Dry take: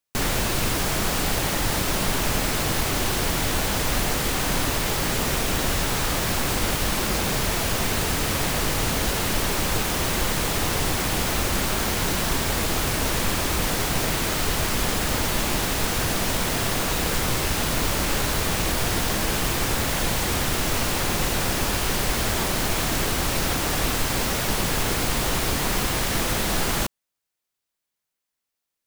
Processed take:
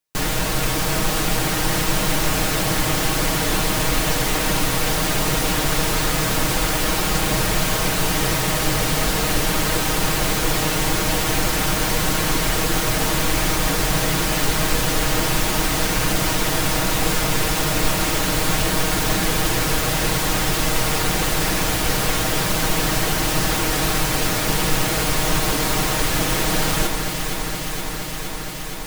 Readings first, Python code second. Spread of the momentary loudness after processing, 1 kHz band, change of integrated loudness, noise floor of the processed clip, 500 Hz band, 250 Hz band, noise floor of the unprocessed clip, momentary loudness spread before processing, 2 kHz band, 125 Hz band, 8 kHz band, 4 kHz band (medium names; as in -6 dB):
1 LU, +4.0 dB, +3.5 dB, -25 dBFS, +3.5 dB, +4.0 dB, -83 dBFS, 0 LU, +3.5 dB, +3.5 dB, +3.5 dB, +3.5 dB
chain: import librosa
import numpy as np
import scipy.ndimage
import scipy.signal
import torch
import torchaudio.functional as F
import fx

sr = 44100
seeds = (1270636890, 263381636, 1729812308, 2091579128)

y = x + 0.65 * np.pad(x, (int(6.4 * sr / 1000.0), 0))[:len(x)]
y = fx.echo_alternate(y, sr, ms=234, hz=2000.0, feedback_pct=90, wet_db=-6)